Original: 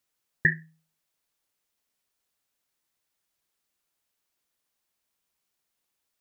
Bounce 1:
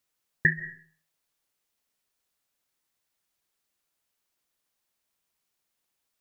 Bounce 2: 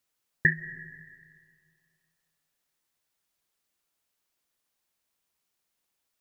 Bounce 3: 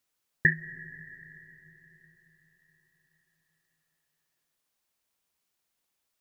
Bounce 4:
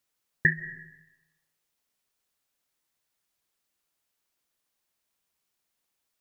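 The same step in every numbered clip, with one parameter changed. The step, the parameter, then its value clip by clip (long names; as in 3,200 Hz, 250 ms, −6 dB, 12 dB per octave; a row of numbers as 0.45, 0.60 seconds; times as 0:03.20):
comb and all-pass reverb, RT60: 0.46, 2.1, 4.7, 1 seconds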